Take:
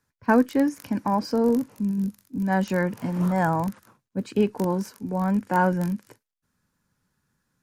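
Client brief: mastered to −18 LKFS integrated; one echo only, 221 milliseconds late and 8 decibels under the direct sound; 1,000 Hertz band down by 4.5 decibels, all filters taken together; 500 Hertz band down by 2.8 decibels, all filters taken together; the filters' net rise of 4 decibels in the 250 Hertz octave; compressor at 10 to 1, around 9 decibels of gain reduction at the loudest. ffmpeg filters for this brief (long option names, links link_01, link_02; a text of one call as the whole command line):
ffmpeg -i in.wav -af "equalizer=frequency=250:width_type=o:gain=6,equalizer=frequency=500:width_type=o:gain=-4,equalizer=frequency=1000:width_type=o:gain=-4.5,acompressor=threshold=-19dB:ratio=10,aecho=1:1:221:0.398,volume=7.5dB" out.wav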